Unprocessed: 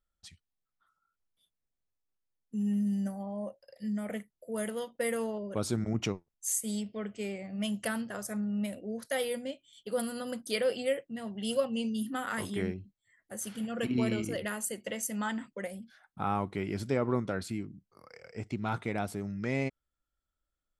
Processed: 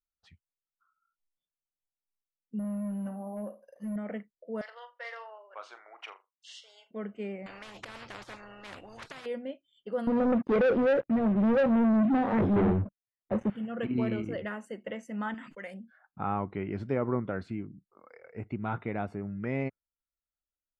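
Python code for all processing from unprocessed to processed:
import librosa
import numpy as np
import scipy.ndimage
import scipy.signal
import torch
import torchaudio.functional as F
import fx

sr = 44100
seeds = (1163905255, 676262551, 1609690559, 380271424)

y = fx.chain(x, sr, fx.room_flutter(wall_m=9.0, rt60_s=0.3),
    fx.clip_hard(threshold_db=-32.0),
    fx.resample_bad(factor=4, down='none', up='zero_stuff'), at=(2.59, 3.96))
y = fx.chain(y, sr, fx.highpass(hz=800.0, slope=24),
    fx.room_flutter(wall_m=7.1, rt60_s=0.23),
    fx.resample_linear(factor=3), at=(4.61, 6.91))
y = fx.chain(y, sr, fx.high_shelf(hz=3100.0, db=11.5),
    fx.over_compress(threshold_db=-35.0, ratio=-1.0),
    fx.spectral_comp(ratio=10.0), at=(7.46, 9.26))
y = fx.chain(y, sr, fx.moving_average(points=31),
    fx.leveller(passes=5), at=(10.07, 13.5))
y = fx.chain(y, sr, fx.tilt_shelf(db=-9.0, hz=1400.0),
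    fx.sustainer(db_per_s=55.0), at=(15.34, 15.74))
y = fx.noise_reduce_blind(y, sr, reduce_db=14)
y = scipy.signal.sosfilt(scipy.signal.butter(2, 2100.0, 'lowpass', fs=sr, output='sos'), y)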